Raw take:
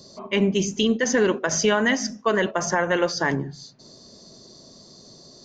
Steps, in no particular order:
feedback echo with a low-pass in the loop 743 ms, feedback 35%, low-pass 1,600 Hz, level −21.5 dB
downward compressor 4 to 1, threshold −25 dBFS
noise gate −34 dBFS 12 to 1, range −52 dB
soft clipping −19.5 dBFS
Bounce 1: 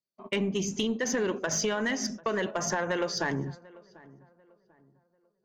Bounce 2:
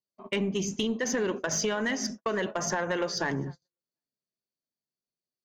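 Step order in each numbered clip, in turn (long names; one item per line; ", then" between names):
noise gate, then downward compressor, then soft clipping, then feedback echo with a low-pass in the loop
downward compressor, then feedback echo with a low-pass in the loop, then noise gate, then soft clipping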